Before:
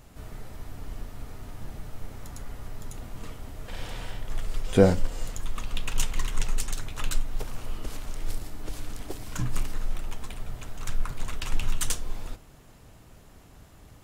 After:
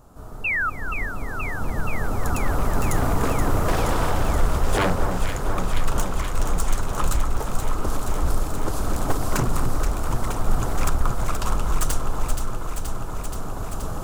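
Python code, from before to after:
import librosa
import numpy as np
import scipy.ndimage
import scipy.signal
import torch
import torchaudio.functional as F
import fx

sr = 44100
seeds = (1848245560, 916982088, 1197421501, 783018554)

p1 = fx.recorder_agc(x, sr, target_db=-8.0, rise_db_per_s=6.8, max_gain_db=30)
p2 = fx.curve_eq(p1, sr, hz=(130.0, 1300.0, 2000.0, 7200.0), db=(0, 6, -13, -2))
p3 = fx.spec_paint(p2, sr, seeds[0], shape='fall', start_s=0.44, length_s=0.26, low_hz=1200.0, high_hz=2800.0, level_db=-23.0)
p4 = 10.0 ** (-15.5 / 20.0) * (np.abs((p3 / 10.0 ** (-15.5 / 20.0) + 3.0) % 4.0 - 2.0) - 1.0)
y = p4 + fx.echo_alternate(p4, sr, ms=238, hz=1500.0, feedback_pct=89, wet_db=-6, dry=0)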